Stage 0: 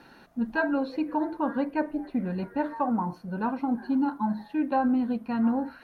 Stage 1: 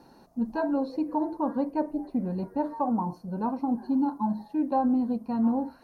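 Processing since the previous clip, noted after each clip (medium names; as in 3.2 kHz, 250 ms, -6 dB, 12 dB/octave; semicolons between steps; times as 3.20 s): high-order bell 2.2 kHz -13 dB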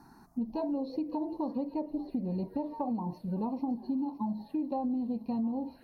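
touch-sensitive phaser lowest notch 500 Hz, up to 1.5 kHz, full sweep at -28.5 dBFS; feedback echo behind a high-pass 563 ms, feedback 52%, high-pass 2.3 kHz, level -8 dB; compression, threshold -32 dBFS, peak gain reduction 11 dB; trim +2 dB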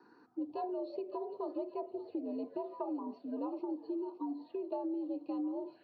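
frequency shift +75 Hz; cabinet simulation 330–3700 Hz, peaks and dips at 380 Hz -5 dB, 860 Hz -8 dB, 2 kHz -9 dB; band-stop 1.1 kHz, Q 6.1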